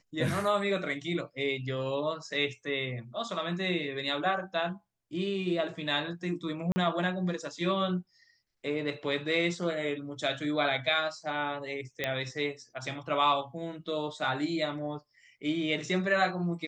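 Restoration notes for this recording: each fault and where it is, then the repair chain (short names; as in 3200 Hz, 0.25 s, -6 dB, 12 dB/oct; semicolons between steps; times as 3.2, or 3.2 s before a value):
6.72–6.76 gap 40 ms
12.04 pop -15 dBFS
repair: de-click; interpolate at 6.72, 40 ms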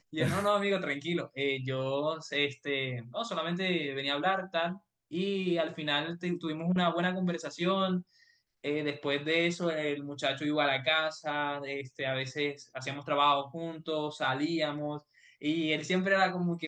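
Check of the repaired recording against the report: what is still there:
none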